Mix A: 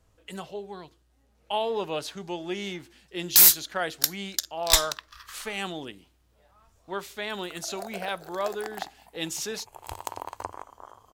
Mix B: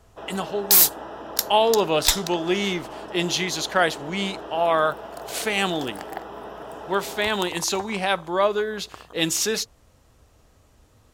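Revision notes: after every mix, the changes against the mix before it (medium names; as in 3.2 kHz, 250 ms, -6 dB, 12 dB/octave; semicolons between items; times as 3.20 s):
speech +9.5 dB; first sound: unmuted; second sound: entry -2.65 s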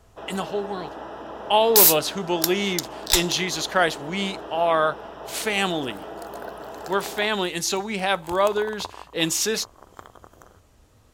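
second sound: entry +1.05 s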